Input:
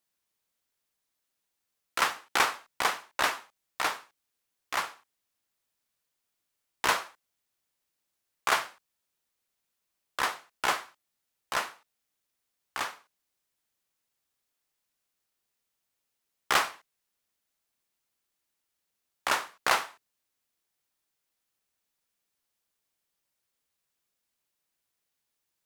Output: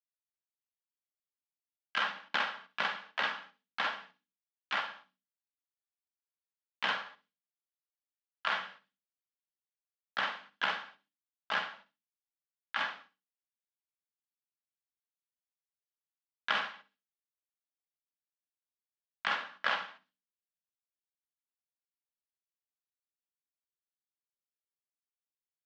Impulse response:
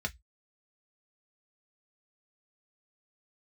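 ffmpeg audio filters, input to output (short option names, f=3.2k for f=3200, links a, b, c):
-filter_complex "[0:a]agate=range=-33dB:threshold=-58dB:ratio=3:detection=peak,bandreject=f=50:t=h:w=6,bandreject=f=100:t=h:w=6,bandreject=f=150:t=h:w=6,bandreject=f=200:t=h:w=6,bandreject=f=250:t=h:w=6,bandreject=f=300:t=h:w=6,bandreject=f=350:t=h:w=6,bandreject=f=400:t=h:w=6,bandreject=f=450:t=h:w=6,aecho=1:1:3.6:0.44,acompressor=threshold=-35dB:ratio=4,asplit=3[a][b][c];[b]asetrate=33038,aresample=44100,atempo=1.33484,volume=-6dB[d];[c]asetrate=52444,aresample=44100,atempo=0.840896,volume=-5dB[e];[a][d][e]amix=inputs=3:normalize=0,highpass=f=120:w=0.5412,highpass=f=120:w=1.3066,equalizer=f=190:t=q:w=4:g=9,equalizer=f=360:t=q:w=4:g=-10,equalizer=f=1.6k:t=q:w=4:g=7,equalizer=f=3.1k:t=q:w=4:g=7,lowpass=f=4.4k:w=0.5412,lowpass=f=4.4k:w=1.3066,asplit=2[f][g];[g]aecho=0:1:64|128:0.178|0.0267[h];[f][h]amix=inputs=2:normalize=0"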